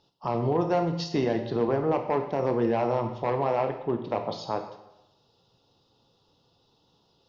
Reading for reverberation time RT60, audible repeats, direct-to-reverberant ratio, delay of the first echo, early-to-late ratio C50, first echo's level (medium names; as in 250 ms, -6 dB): 0.90 s, no echo, 5.5 dB, no echo, 8.5 dB, no echo